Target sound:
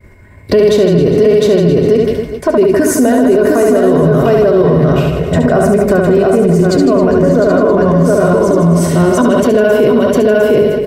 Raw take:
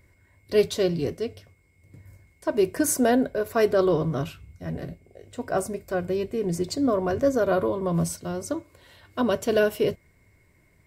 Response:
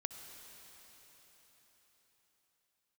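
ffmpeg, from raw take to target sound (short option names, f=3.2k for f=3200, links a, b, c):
-filter_complex "[0:a]agate=range=-33dB:threshold=-53dB:ratio=3:detection=peak,asplit=2[a][b];[b]aecho=0:1:706:0.708[c];[a][c]amix=inputs=2:normalize=0,acompressor=threshold=-31dB:ratio=4,highshelf=f=2.6k:g=-12,aecho=1:1:4.8:0.36,asplit=2[d][e];[e]aecho=0:1:70|157.5|266.9|403.6|574.5:0.631|0.398|0.251|0.158|0.1[f];[d][f]amix=inputs=2:normalize=0,alimiter=level_in=27.5dB:limit=-1dB:release=50:level=0:latency=1,volume=-1dB"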